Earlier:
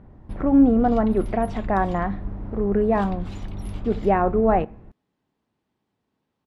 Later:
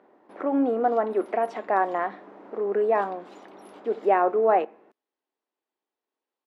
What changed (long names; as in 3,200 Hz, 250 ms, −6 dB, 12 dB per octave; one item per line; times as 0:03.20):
background −9.0 dB
master: add high-pass filter 350 Hz 24 dB per octave